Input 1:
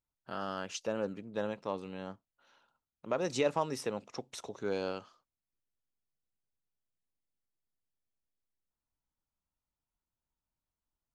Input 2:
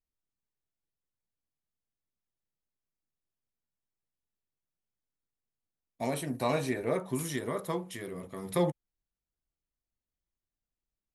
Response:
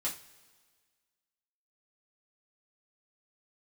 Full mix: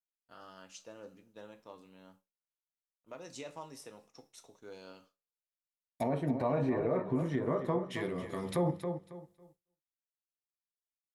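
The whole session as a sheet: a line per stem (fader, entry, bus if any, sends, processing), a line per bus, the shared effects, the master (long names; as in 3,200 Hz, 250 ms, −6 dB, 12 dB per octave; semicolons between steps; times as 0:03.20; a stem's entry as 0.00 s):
−18.0 dB, 0.00 s, send −4.5 dB, no echo send, no processing
+2.0 dB, 0.00 s, send −13 dB, echo send −11 dB, treble cut that deepens with the level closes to 1,100 Hz, closed at −31 dBFS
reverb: on, pre-delay 3 ms
echo: repeating echo 274 ms, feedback 26%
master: downward expander −58 dBFS; high-shelf EQ 5,800 Hz +11.5 dB; brickwall limiter −22 dBFS, peak gain reduction 7 dB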